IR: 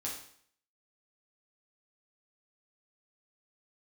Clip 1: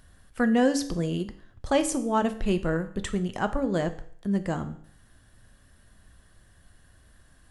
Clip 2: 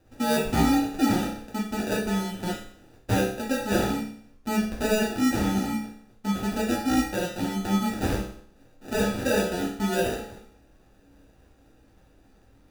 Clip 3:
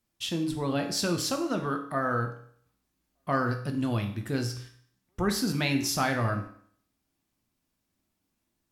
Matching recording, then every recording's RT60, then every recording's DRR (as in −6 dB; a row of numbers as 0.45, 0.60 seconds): 2; 0.60, 0.60, 0.60 seconds; 9.0, −4.5, 4.0 decibels